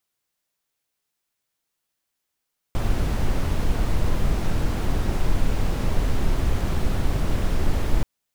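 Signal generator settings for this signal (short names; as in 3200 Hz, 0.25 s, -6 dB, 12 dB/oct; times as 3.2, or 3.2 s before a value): noise brown, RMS -19.5 dBFS 5.28 s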